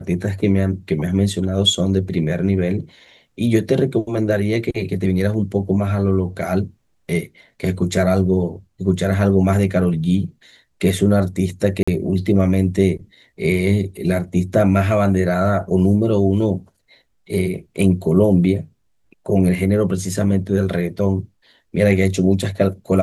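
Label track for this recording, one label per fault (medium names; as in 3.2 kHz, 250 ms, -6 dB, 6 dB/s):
11.830000	11.880000	dropout 45 ms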